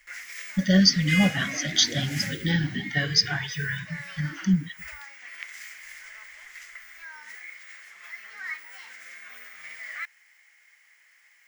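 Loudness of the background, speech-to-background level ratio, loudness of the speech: −36.5 LKFS, 12.5 dB, −24.0 LKFS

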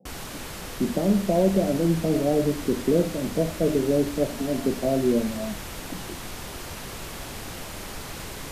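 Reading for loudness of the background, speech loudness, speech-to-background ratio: −36.0 LKFS, −24.5 LKFS, 11.5 dB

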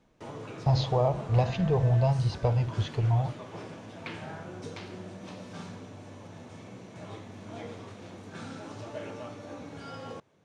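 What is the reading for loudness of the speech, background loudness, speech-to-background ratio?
−27.0 LKFS, −42.5 LKFS, 15.5 dB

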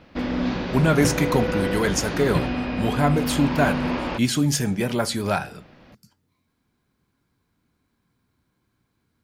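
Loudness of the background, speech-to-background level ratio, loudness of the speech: −26.5 LKFS, 3.5 dB, −23.0 LKFS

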